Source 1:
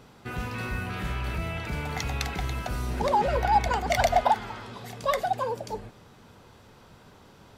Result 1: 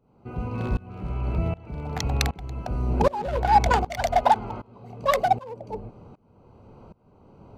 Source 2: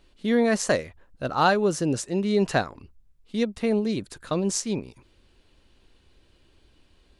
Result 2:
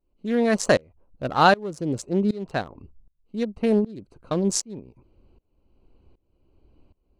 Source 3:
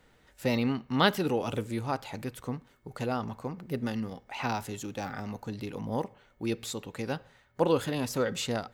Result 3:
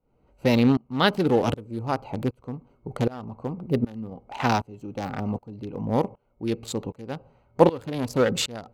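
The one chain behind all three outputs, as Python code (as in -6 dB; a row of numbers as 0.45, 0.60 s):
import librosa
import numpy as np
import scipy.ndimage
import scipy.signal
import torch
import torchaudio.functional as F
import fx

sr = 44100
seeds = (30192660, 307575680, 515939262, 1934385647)

y = fx.wiener(x, sr, points=25)
y = fx.tremolo_shape(y, sr, shape='saw_up', hz=1.3, depth_pct=95)
y = y * 10.0 ** (-26 / 20.0) / np.sqrt(np.mean(np.square(y)))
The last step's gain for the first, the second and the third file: +8.5, +5.0, +11.5 dB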